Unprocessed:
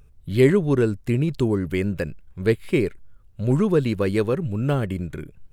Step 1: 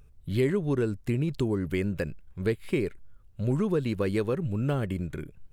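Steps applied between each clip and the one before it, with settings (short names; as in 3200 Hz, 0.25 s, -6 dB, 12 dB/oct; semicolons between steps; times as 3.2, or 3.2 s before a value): compressor 2.5:1, threshold -21 dBFS, peak gain reduction 7.5 dB; gain -3 dB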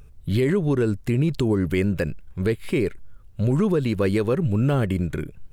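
limiter -20.5 dBFS, peak gain reduction 6 dB; gain +8 dB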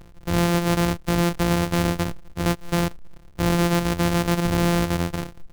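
sample sorter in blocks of 256 samples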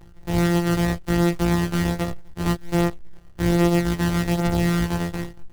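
small resonant body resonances 350/810/1900 Hz, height 6 dB; chorus voices 4, 0.42 Hz, delay 17 ms, depth 1.1 ms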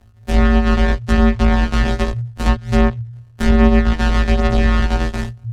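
gate -31 dBFS, range -10 dB; frequency shift -120 Hz; treble ducked by the level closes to 2500 Hz, closed at -15 dBFS; gain +7.5 dB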